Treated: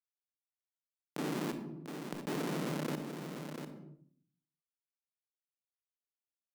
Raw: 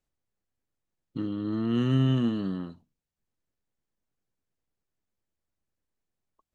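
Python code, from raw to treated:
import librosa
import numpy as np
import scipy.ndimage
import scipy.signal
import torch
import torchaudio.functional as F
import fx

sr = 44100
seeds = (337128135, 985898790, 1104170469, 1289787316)

y = fx.reverse_delay_fb(x, sr, ms=591, feedback_pct=48, wet_db=-8.5)
y = fx.filter_lfo_highpass(y, sr, shape='square', hz=0.66, low_hz=640.0, high_hz=3200.0, q=1.8)
y = fx.tilt_eq(y, sr, slope=-4.0)
y = np.sign(y) * np.maximum(np.abs(y) - 10.0 ** (-54.0 / 20.0), 0.0)
y = fx.whisperise(y, sr, seeds[0])
y = fx.env_flanger(y, sr, rest_ms=7.0, full_db=-38.5)
y = fx.schmitt(y, sr, flips_db=-38.5)
y = scipy.signal.sosfilt(scipy.signal.ellip(4, 1.0, 40, 150.0, 'highpass', fs=sr, output='sos'), y)
y = y + 10.0 ** (-23.5 / 20.0) * np.pad(y, (int(695 * sr / 1000.0), 0))[:len(y)]
y = fx.room_shoebox(y, sr, seeds[1], volume_m3=540.0, walls='furnished', distance_m=0.39)
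y = fx.env_flatten(y, sr, amount_pct=70)
y = F.gain(torch.from_numpy(y), 9.5).numpy()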